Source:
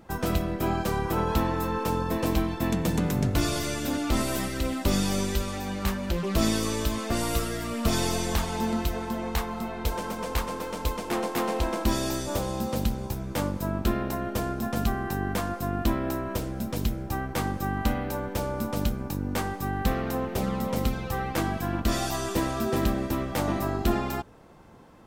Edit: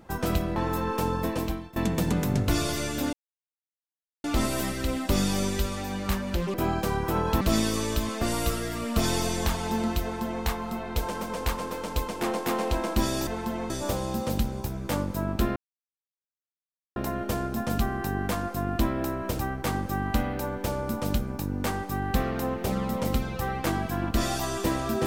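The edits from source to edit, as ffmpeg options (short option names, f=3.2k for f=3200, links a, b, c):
-filter_complex "[0:a]asplit=10[a][b][c][d][e][f][g][h][i][j];[a]atrim=end=0.562[k];[b]atrim=start=1.428:end=2.63,asetpts=PTS-STARTPTS,afade=t=out:st=0.662:d=0.54:silence=0.1[l];[c]atrim=start=2.63:end=4,asetpts=PTS-STARTPTS,afade=t=in:d=0.004:c=hsin:silence=0.1,afade=t=out:st=1.366:d=0.004:c=hsin,apad=pad_dur=1.11[m];[d]atrim=start=4:end=6.302,asetpts=PTS-STARTPTS,afade=t=in:d=0.004:c=hsin[n];[e]atrim=start=0.558:end=1.432[o];[f]atrim=start=6.298:end=12.162[p];[g]atrim=start=8.908:end=9.342[q];[h]atrim=start=12.158:end=14.02,asetpts=PTS-STARTPTS,afade=t=out:st=1.858:d=0.004:c=hsin,apad=pad_dur=1.4[r];[i]atrim=start=14.02:end=16.452,asetpts=PTS-STARTPTS,afade=t=in:d=0.004:c=hsin[s];[j]atrim=start=17.098[t];[l][m][n]concat=n=3:v=0:a=1[u];[k][u]acrossfade=d=0.004:c1=hsin:c2=hsin[v];[v][o]acrossfade=d=0.004:c1=hsin:c2=hsin[w];[w][p]acrossfade=d=0.004:c1=hsin:c2=hsin[x];[x][q]acrossfade=d=0.004:c1=hsin:c2=hsin[y];[r][s]concat=n=2:v=0:a=1[z];[y][z]acrossfade=d=0.004:c1=hsin:c2=hsin[aa];[aa][t]acrossfade=d=0.004:c1=hsin:c2=hsin"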